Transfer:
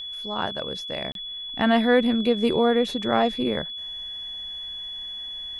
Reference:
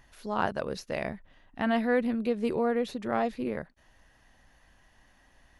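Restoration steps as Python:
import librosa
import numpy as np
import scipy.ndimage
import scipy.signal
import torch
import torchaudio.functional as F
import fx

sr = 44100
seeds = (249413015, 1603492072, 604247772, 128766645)

y = fx.notch(x, sr, hz=3400.0, q=30.0)
y = fx.fix_interpolate(y, sr, at_s=(1.12,), length_ms=32.0)
y = fx.gain(y, sr, db=fx.steps((0.0, 0.0), (1.49, -7.0)))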